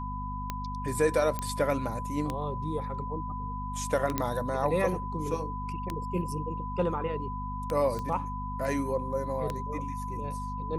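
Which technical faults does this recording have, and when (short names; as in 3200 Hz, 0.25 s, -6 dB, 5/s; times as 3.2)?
hum 50 Hz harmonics 5 -37 dBFS
tick 33 1/3 rpm -17 dBFS
tone 1000 Hz -36 dBFS
1.39 pop -17 dBFS
4.18 pop -12 dBFS
7.99 pop -23 dBFS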